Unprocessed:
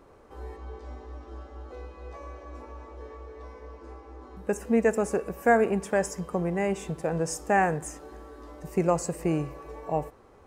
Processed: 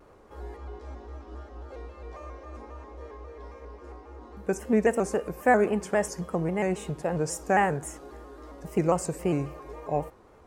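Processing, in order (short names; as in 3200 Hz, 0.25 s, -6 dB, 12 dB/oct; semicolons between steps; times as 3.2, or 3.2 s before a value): shaped vibrato square 3.7 Hz, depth 100 cents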